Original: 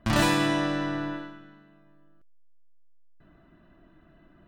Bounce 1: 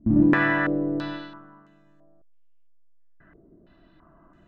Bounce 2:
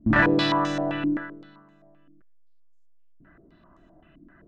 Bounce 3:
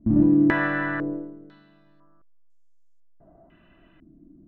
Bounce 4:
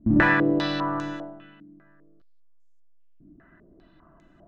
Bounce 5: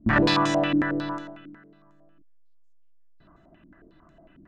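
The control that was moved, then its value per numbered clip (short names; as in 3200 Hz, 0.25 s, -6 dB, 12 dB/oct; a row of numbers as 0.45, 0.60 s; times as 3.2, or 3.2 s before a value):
stepped low-pass, rate: 3, 7.7, 2, 5, 11 Hz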